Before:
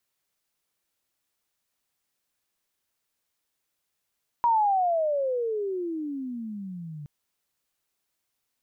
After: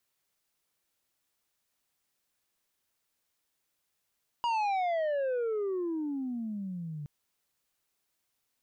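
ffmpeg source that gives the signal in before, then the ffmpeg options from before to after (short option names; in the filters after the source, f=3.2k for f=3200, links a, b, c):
-f lavfi -i "aevalsrc='pow(10,(-18-18*t/2.62)/20)*sin(2*PI*964*2.62/(-33*log(2)/12)*(exp(-33*log(2)/12*t/2.62)-1))':d=2.62:s=44100"
-af "asoftclip=type=tanh:threshold=-28dB"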